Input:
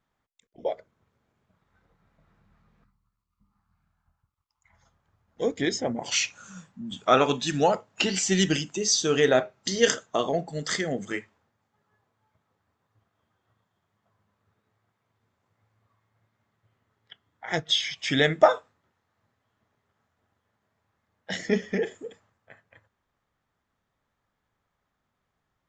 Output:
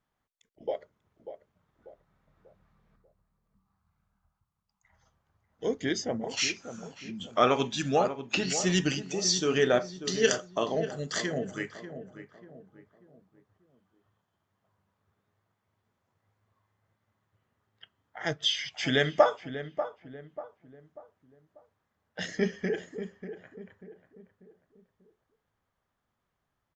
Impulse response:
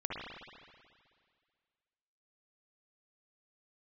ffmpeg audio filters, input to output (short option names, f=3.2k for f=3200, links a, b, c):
-filter_complex "[0:a]asplit=2[a][b];[b]adelay=567,lowpass=f=1.3k:p=1,volume=-10dB,asplit=2[c][d];[d]adelay=567,lowpass=f=1.3k:p=1,volume=0.42,asplit=2[e][f];[f]adelay=567,lowpass=f=1.3k:p=1,volume=0.42,asplit=2[g][h];[h]adelay=567,lowpass=f=1.3k:p=1,volume=0.42[i];[c][e][g][i]amix=inputs=4:normalize=0[j];[a][j]amix=inputs=2:normalize=0,asetrate=42336,aresample=44100,volume=-3.5dB"